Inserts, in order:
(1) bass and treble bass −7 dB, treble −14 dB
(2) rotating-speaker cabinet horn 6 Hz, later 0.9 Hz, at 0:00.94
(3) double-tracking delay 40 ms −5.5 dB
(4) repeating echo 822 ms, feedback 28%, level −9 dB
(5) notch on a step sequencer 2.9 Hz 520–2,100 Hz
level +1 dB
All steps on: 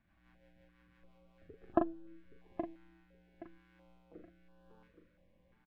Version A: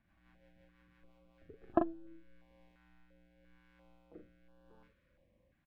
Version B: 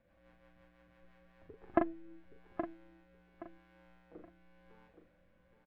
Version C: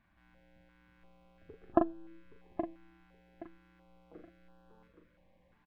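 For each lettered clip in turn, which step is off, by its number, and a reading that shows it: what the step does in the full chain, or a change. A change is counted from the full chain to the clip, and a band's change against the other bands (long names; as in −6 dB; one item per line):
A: 4, change in momentary loudness spread −11 LU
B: 5, 2 kHz band +7.0 dB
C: 2, change in momentary loudness spread −2 LU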